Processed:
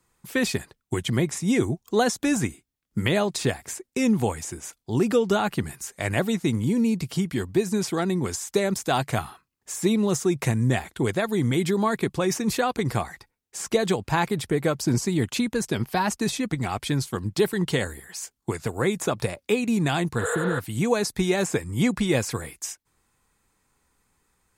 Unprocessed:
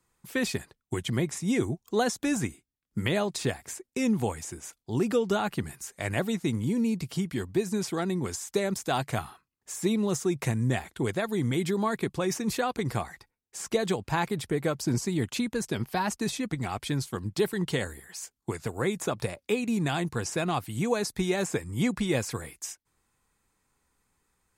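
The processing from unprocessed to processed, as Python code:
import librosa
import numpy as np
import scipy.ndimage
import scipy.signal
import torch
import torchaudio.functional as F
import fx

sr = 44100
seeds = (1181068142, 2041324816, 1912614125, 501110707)

y = fx.spec_repair(x, sr, seeds[0], start_s=20.23, length_s=0.34, low_hz=450.0, high_hz=6700.0, source='before')
y = y * 10.0 ** (4.5 / 20.0)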